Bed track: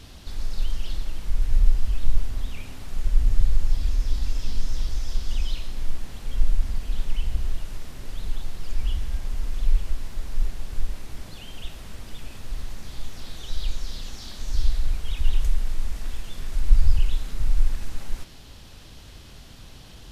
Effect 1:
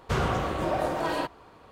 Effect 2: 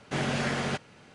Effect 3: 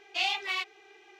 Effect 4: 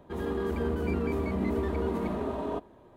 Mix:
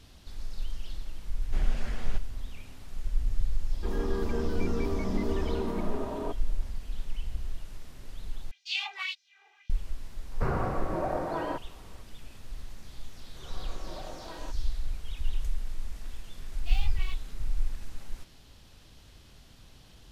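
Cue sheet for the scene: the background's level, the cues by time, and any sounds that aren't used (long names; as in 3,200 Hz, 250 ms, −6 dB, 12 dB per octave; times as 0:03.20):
bed track −9 dB
0:01.41: mix in 2 −14 dB
0:03.73: mix in 4 −2 dB
0:08.51: overwrite with 3 −6.5 dB + auto-filter high-pass sine 1.8 Hz 750–5,100 Hz
0:10.31: mix in 1 −3 dB + moving average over 13 samples
0:13.25: mix in 1 −16 dB + fade in at the beginning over 0.54 s
0:16.51: mix in 3 −13.5 dB + one scale factor per block 5 bits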